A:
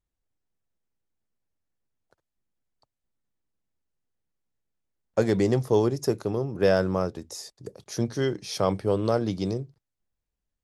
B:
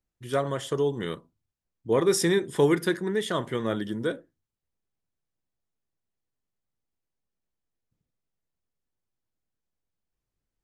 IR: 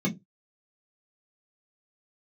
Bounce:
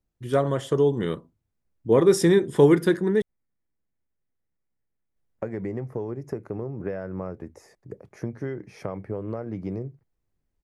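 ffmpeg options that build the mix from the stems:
-filter_complex "[0:a]highshelf=f=2.8k:t=q:w=3:g=-9.5,acompressor=threshold=-27dB:ratio=16,adelay=250,volume=-3dB[a];[1:a]volume=2dB,asplit=3[b][c][d];[b]atrim=end=3.22,asetpts=PTS-STARTPTS,afade=t=out:st=3.216:d=0.004:c=hsin[e];[c]atrim=start=3.22:end=5.16,asetpts=PTS-STARTPTS,volume=0[f];[d]atrim=start=5.16,asetpts=PTS-STARTPTS,afade=t=in:d=0.004:c=hsin[g];[e][f][g]concat=n=3:v=0:a=1[h];[a][h]amix=inputs=2:normalize=0,tiltshelf=f=970:g=4.5"

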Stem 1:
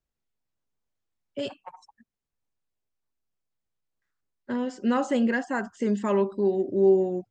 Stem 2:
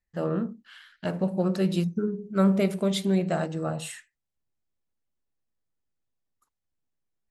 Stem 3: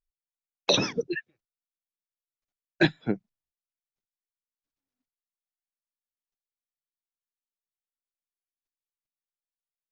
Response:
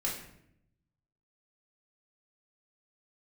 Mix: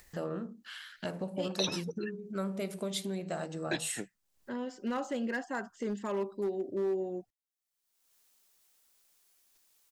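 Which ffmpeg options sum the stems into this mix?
-filter_complex "[0:a]alimiter=limit=-16.5dB:level=0:latency=1:release=250,adynamicsmooth=sensitivity=6.5:basefreq=6.9k,asoftclip=type=hard:threshold=-18.5dB,volume=-7dB[a];[1:a]acompressor=threshold=-36dB:ratio=3,volume=1dB[b];[2:a]adelay=900,volume=-12dB[c];[a][b][c]amix=inputs=3:normalize=0,bass=f=250:g=-5,treble=f=4k:g=6,acompressor=mode=upward:threshold=-41dB:ratio=2.5"

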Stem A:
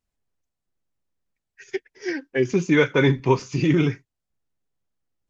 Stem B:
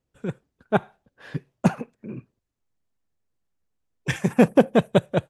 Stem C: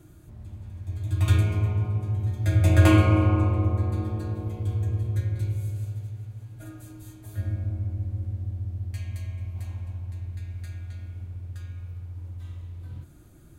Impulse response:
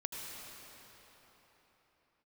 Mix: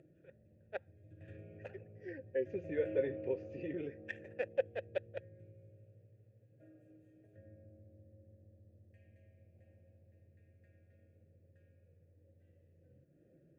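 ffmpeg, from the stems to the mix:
-filter_complex "[0:a]volume=-1.5dB[a];[1:a]highpass=1.2k,aeval=exprs='0.237*(cos(1*acos(clip(val(0)/0.237,-1,1)))-cos(1*PI/2))+0.0335*(cos(3*acos(clip(val(0)/0.237,-1,1)))-cos(3*PI/2))+0.0119*(cos(7*acos(clip(val(0)/0.237,-1,1)))-cos(7*PI/2))':c=same,volume=1dB,asplit=2[b][c];[2:a]equalizer=f=160:t=o:w=0.67:g=11,equalizer=f=1k:t=o:w=0.67:g=-11,equalizer=f=4k:t=o:w=0.67:g=-10,volume=-5.5dB[d];[c]apad=whole_len=233340[e];[a][e]sidechaincompress=threshold=-37dB:ratio=8:attack=5.1:release=861[f];[f][d]amix=inputs=2:normalize=0,acompressor=threshold=-43dB:ratio=1.5,volume=0dB[g];[b][g]amix=inputs=2:normalize=0,tiltshelf=f=1.4k:g=7.5,acompressor=mode=upward:threshold=-35dB:ratio=2.5,asplit=3[h][i][j];[h]bandpass=f=530:t=q:w=8,volume=0dB[k];[i]bandpass=f=1.84k:t=q:w=8,volume=-6dB[l];[j]bandpass=f=2.48k:t=q:w=8,volume=-9dB[m];[k][l][m]amix=inputs=3:normalize=0"

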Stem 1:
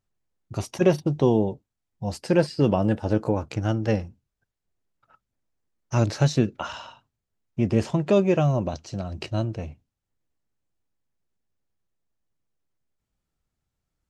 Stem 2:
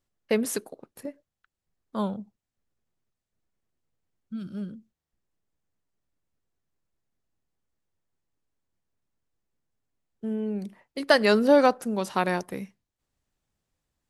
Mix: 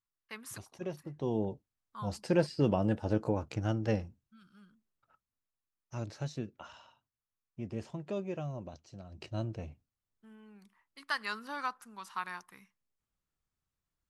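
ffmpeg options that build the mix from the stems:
-filter_complex "[0:a]volume=1dB,afade=t=in:st=1.15:d=0.41:silence=0.237137,afade=t=out:st=4.82:d=0.68:silence=0.316228,afade=t=in:st=9.09:d=0.37:silence=0.375837[a];[1:a]lowshelf=f=790:t=q:w=3:g=-11,volume=-13.5dB[b];[a][b]amix=inputs=2:normalize=0"

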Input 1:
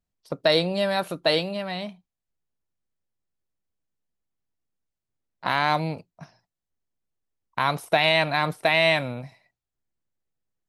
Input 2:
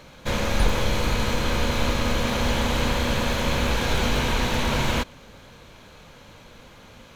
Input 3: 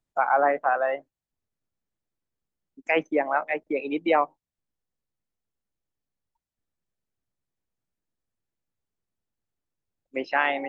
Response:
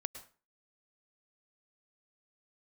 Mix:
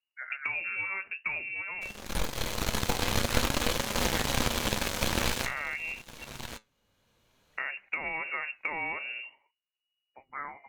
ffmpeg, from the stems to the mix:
-filter_complex "[0:a]volume=-2.5dB,asplit=2[a][b];[1:a]aeval=exprs='0.473*(cos(1*acos(clip(val(0)/0.473,-1,1)))-cos(1*PI/2))+0.075*(cos(7*acos(clip(val(0)/0.473,-1,1)))-cos(7*PI/2))':c=same,adelay=1550,volume=2.5dB[c];[2:a]highpass=f=990:w=0.5412,highpass=f=990:w=1.3066,volume=-9.5dB[d];[b]apad=whole_len=384048[e];[c][e]sidechaincompress=threshold=-40dB:ratio=12:attack=16:release=1030[f];[a][d]amix=inputs=2:normalize=0,lowpass=f=2.5k:t=q:w=0.5098,lowpass=f=2.5k:t=q:w=0.6013,lowpass=f=2.5k:t=q:w=0.9,lowpass=f=2.5k:t=q:w=2.563,afreqshift=-2900,acompressor=threshold=-27dB:ratio=6,volume=0dB[g];[f][g]amix=inputs=2:normalize=0,highshelf=f=6.9k:g=11.5,flanger=delay=4.8:depth=5.9:regen=74:speed=0.51:shape=triangular"

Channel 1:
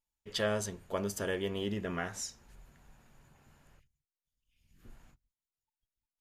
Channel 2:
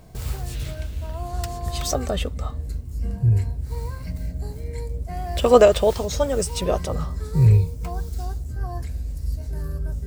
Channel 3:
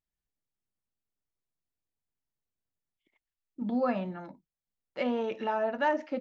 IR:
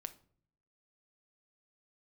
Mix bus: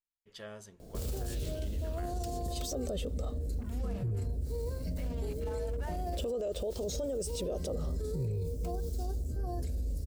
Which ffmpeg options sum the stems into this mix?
-filter_complex "[0:a]volume=-14.5dB[a];[1:a]equalizer=f=125:t=o:w=1:g=-6,equalizer=f=250:t=o:w=1:g=4,equalizer=f=500:t=o:w=1:g=9,equalizer=f=1k:t=o:w=1:g=-11,equalizer=f=2k:t=o:w=1:g=-9,acompressor=threshold=-19dB:ratio=6,adelay=800,volume=-3dB[b];[2:a]alimiter=limit=-21dB:level=0:latency=1:release=303,acrusher=bits=5:mix=0:aa=0.5,volume=-14dB[c];[a][b][c]amix=inputs=3:normalize=0,alimiter=level_in=4dB:limit=-24dB:level=0:latency=1:release=15,volume=-4dB"

